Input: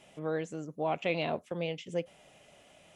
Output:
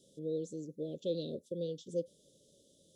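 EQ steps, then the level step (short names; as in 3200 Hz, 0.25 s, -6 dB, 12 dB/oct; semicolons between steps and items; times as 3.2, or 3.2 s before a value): Chebyshev band-stop 540–3500 Hz, order 5; low shelf 110 Hz -8.5 dB; -1.0 dB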